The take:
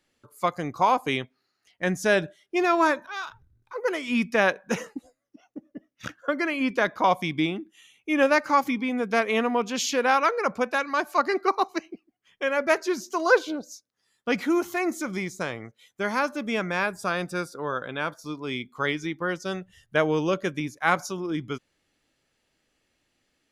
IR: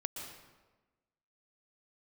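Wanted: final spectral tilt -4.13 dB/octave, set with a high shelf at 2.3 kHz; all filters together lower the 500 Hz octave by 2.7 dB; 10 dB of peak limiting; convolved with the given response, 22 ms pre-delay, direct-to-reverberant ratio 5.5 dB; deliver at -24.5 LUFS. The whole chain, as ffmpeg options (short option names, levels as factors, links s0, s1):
-filter_complex "[0:a]equalizer=f=500:t=o:g=-3,highshelf=f=2300:g=-6,alimiter=limit=0.112:level=0:latency=1,asplit=2[s0][s1];[1:a]atrim=start_sample=2205,adelay=22[s2];[s1][s2]afir=irnorm=-1:irlink=0,volume=0.501[s3];[s0][s3]amix=inputs=2:normalize=0,volume=1.88"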